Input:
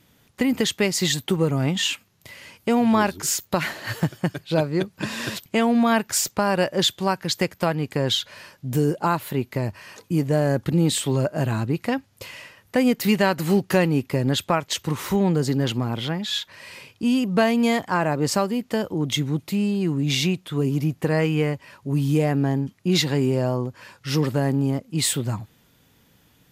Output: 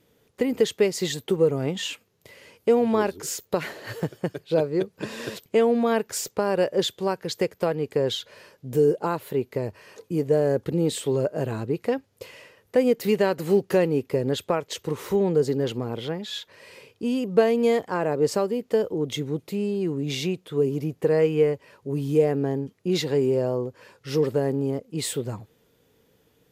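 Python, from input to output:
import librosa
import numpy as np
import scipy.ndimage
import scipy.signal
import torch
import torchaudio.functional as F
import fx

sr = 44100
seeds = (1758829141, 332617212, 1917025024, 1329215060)

y = fx.peak_eq(x, sr, hz=450.0, db=14.0, octaves=0.69)
y = F.gain(torch.from_numpy(y), -7.5).numpy()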